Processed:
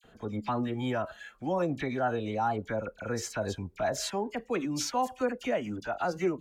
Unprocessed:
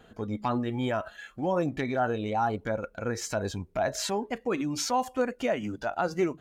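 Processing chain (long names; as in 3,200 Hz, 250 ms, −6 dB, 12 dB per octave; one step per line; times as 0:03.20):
all-pass dispersion lows, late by 42 ms, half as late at 1,800 Hz
level −2 dB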